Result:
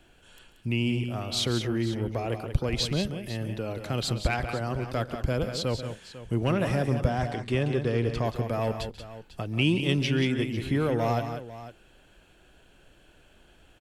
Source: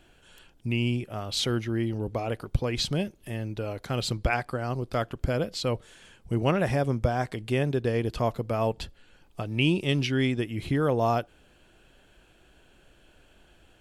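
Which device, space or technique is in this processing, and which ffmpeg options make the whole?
one-band saturation: -filter_complex "[0:a]asettb=1/sr,asplit=3[s0][s1][s2];[s0]atrim=end=7.104[s3];[s1]atrim=start=7.1:end=8.25,asetpts=PTS-STARTPTS,afade=t=in:d=0.004:c=qsin,afade=t=out:st=1.146:d=0.004:c=qsin,lowpass=7900[s4];[s2]atrim=start=8.246[s5];[s3][s4]acrossfade=d=0.004:c1=hsin:c2=qsin[s6];[s6][s5]acrossfade=d=0.004:c1=qsin:c2=hsin,acrossover=split=310|2200[s7][s8][s9];[s8]asoftclip=type=tanh:threshold=0.0631[s10];[s7][s10][s9]amix=inputs=3:normalize=0,aecho=1:1:139|181|498:0.15|0.376|0.178"

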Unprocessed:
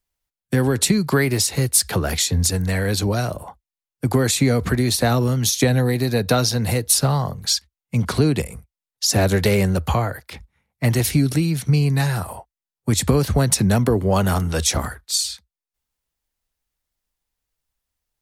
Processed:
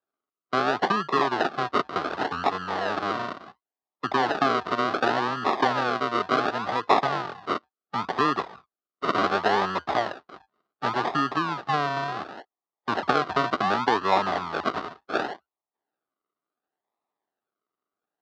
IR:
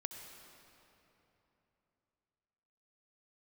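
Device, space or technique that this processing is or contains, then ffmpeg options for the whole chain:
circuit-bent sampling toy: -af "acrusher=samples=41:mix=1:aa=0.000001:lfo=1:lforange=24.6:lforate=0.69,highpass=460,equalizer=f=520:t=q:w=4:g=-8,equalizer=f=770:t=q:w=4:g=4,equalizer=f=1200:t=q:w=4:g=7,equalizer=f=2300:t=q:w=4:g=-8,equalizer=f=3200:t=q:w=4:g=-4,lowpass=f=4100:w=0.5412,lowpass=f=4100:w=1.3066"

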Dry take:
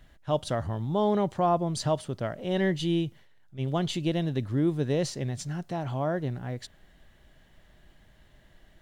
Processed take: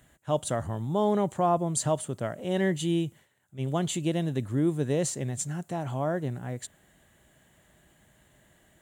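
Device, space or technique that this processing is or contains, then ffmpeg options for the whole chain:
budget condenser microphone: -af "highpass=86,highshelf=f=6200:t=q:w=3:g=6.5"

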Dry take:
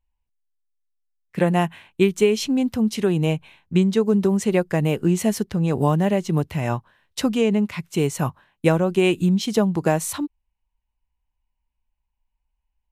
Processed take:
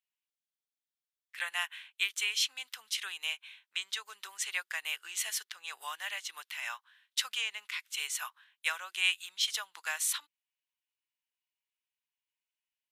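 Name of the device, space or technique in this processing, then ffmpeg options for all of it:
headphones lying on a table: -af "highpass=f=1400:w=0.5412,highpass=f=1400:w=1.3066,equalizer=f=3400:t=o:w=0.41:g=5.5,volume=0.75"

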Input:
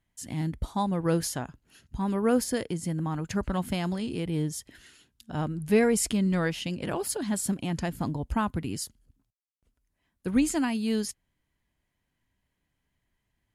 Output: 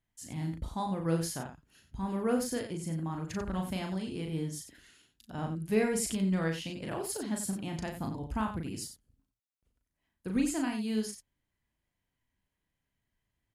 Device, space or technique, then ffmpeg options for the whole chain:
slapback doubling: -filter_complex "[0:a]asplit=3[s0][s1][s2];[s1]adelay=37,volume=0.631[s3];[s2]adelay=91,volume=0.355[s4];[s0][s3][s4]amix=inputs=3:normalize=0,volume=0.447"

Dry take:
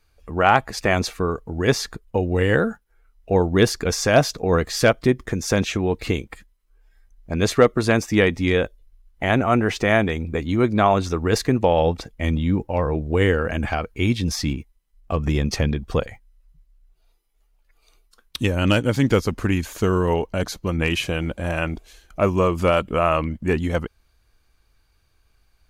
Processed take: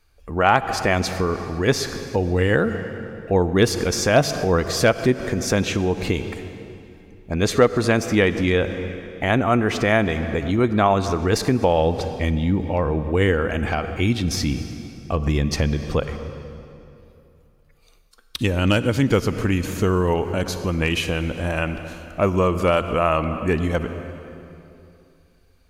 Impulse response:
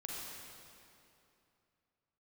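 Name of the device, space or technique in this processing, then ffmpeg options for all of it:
ducked reverb: -filter_complex "[0:a]asplit=3[s0][s1][s2];[1:a]atrim=start_sample=2205[s3];[s1][s3]afir=irnorm=-1:irlink=0[s4];[s2]apad=whole_len=1133168[s5];[s4][s5]sidechaincompress=threshold=0.0708:ratio=10:attack=10:release=143,volume=0.596[s6];[s0][s6]amix=inputs=2:normalize=0,volume=0.891"

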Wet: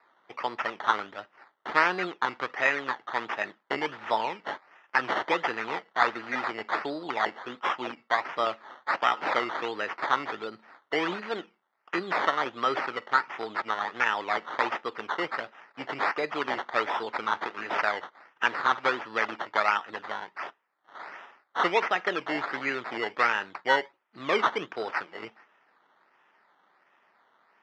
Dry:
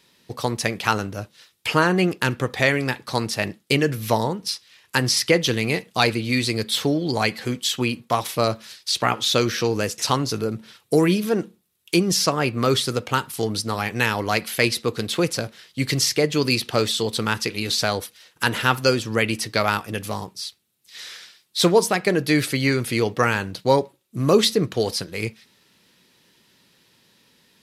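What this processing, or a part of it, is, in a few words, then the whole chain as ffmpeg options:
circuit-bent sampling toy: -af "bandreject=f=2300:w=8,acrusher=samples=14:mix=1:aa=0.000001:lfo=1:lforange=8.4:lforate=1.4,highpass=480,equalizer=f=490:t=q:w=4:g=-4,equalizer=f=880:t=q:w=4:g=4,equalizer=f=1300:t=q:w=4:g=6,equalizer=f=1900:t=q:w=4:g=5,equalizer=f=4000:t=q:w=4:g=-4,lowpass=f=4200:w=0.5412,lowpass=f=4200:w=1.3066,volume=0.531"

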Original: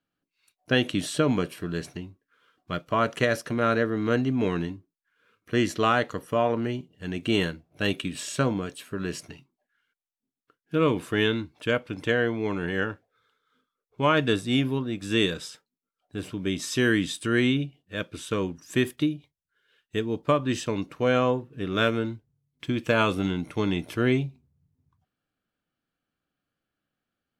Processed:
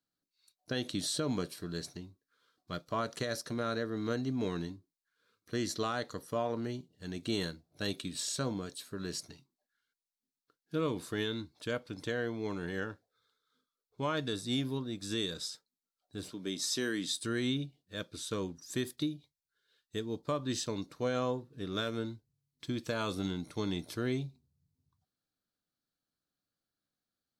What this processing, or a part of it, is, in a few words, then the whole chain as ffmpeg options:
over-bright horn tweeter: -filter_complex "[0:a]highshelf=f=3400:t=q:w=3:g=6,alimiter=limit=0.2:level=0:latency=1:release=141,asettb=1/sr,asplit=3[s0][s1][s2];[s0]atrim=end=16.294[s3];[s1]atrim=start=16.29:end=17.11,asetpts=PTS-STARTPTS,afade=t=in:d=0.004:c=qsin,afade=t=out:st=0.816:d=0.004:c=qsin,highpass=200[s4];[s2]atrim=start=17.106[s5];[s3][s4]acrossfade=d=0.004:c1=hsin:c2=qsin[s6];[s6][s5]acrossfade=d=0.004:c1=qsin:c2=hsin,volume=0.376"

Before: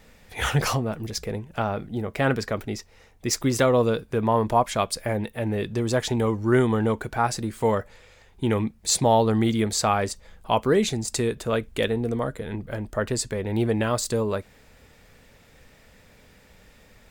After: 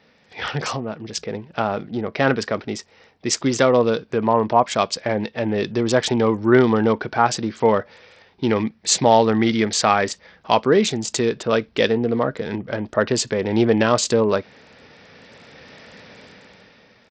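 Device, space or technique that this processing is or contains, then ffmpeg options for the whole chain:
Bluetooth headset: -filter_complex "[0:a]asettb=1/sr,asplit=3[s0][s1][s2];[s0]atrim=end=8.564[s3];[s1]atrim=start=8.56:end=10.58,asetpts=PTS-STARTPTS,afade=t=in:d=0.004:c=qsin,afade=t=out:st=2.016:d=0.004:c=qsin,equalizer=f=1900:t=o:w=0.71:g=5.5[s4];[s2]atrim=start=10.576[s5];[s3][s4]acrossfade=d=0.004:c1=hsin:c2=qsin[s6];[s6][s5]acrossfade=d=0.004:c1=qsin:c2=hsin,highpass=160,dynaudnorm=f=280:g=9:m=6.68,aresample=16000,aresample=44100,volume=0.891" -ar 44100 -c:a sbc -b:a 64k

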